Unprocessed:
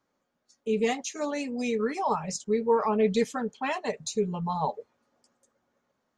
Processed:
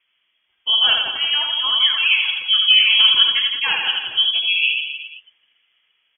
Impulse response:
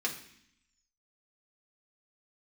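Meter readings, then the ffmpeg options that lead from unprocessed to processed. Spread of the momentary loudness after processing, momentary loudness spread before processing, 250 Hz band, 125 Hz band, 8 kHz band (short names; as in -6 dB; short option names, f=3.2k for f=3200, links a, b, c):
8 LU, 7 LU, under -20 dB, under -15 dB, under -40 dB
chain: -af "lowpass=f=3k:t=q:w=0.5098,lowpass=f=3k:t=q:w=0.6013,lowpass=f=3k:t=q:w=0.9,lowpass=f=3k:t=q:w=2.563,afreqshift=-3500,aecho=1:1:80|168|264.8|371.3|488.4:0.631|0.398|0.251|0.158|0.1,volume=8.5dB"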